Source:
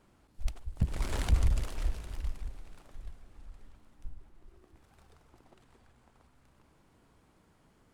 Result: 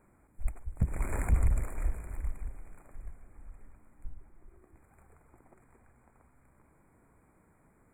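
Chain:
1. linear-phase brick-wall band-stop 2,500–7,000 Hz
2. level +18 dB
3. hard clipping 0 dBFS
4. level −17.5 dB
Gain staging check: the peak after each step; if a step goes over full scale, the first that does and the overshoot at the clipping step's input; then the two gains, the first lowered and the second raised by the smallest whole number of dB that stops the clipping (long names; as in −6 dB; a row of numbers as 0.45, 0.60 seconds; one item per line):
−15.0, +3.0, 0.0, −17.5 dBFS
step 2, 3.0 dB
step 2 +15 dB, step 4 −14.5 dB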